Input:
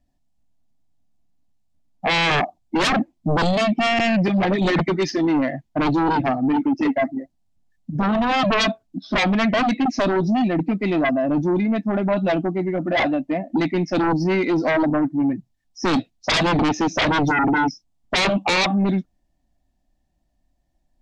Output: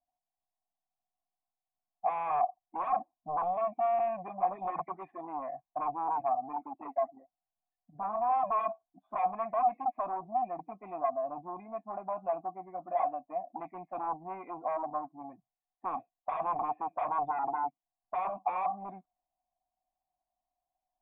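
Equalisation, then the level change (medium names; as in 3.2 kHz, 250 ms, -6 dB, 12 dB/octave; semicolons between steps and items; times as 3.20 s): cascade formant filter a; distance through air 180 m; peaking EQ 2 kHz +11 dB 2.1 oct; -4.0 dB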